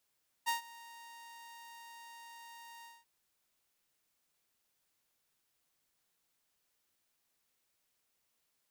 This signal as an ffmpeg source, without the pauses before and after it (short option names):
-f lavfi -i "aevalsrc='0.0473*(2*mod(931*t,1)-1)':d=2.588:s=44100,afade=t=in:d=0.025,afade=t=out:st=0.025:d=0.125:silence=0.0841,afade=t=out:st=2.38:d=0.208"